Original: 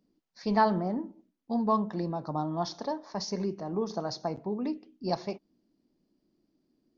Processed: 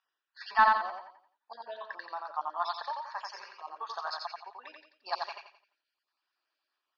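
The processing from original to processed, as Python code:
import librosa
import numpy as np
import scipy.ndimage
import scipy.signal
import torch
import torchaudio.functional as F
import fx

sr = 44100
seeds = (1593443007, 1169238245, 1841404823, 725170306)

p1 = fx.spec_dropout(x, sr, seeds[0], share_pct=37)
p2 = scipy.signal.sosfilt(scipy.signal.butter(4, 1200.0, 'highpass', fs=sr, output='sos'), p1)
p3 = fx.high_shelf(p2, sr, hz=3300.0, db=-9.5)
p4 = fx.notch(p3, sr, hz=2100.0, q=5.3)
p5 = fx.level_steps(p4, sr, step_db=11)
p6 = p4 + F.gain(torch.from_numpy(p5), 2.5).numpy()
p7 = 10.0 ** (-21.0 / 20.0) * np.tanh(p6 / 10.0 ** (-21.0 / 20.0))
p8 = fx.air_absorb(p7, sr, metres=220.0)
p9 = fx.echo_feedback(p8, sr, ms=87, feedback_pct=36, wet_db=-3.5)
y = F.gain(torch.from_numpy(p9), 9.0).numpy()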